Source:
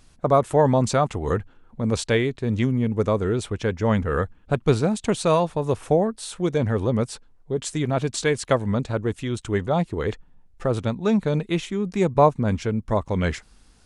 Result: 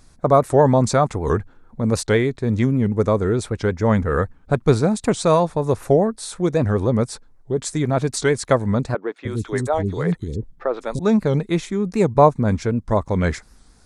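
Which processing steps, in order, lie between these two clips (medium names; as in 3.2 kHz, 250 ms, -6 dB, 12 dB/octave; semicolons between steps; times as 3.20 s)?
peaking EQ 2.9 kHz -11 dB 0.4 oct; 8.95–10.99 s: three bands offset in time mids, highs, lows 210/300 ms, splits 330/3700 Hz; warped record 78 rpm, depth 160 cents; trim +3.5 dB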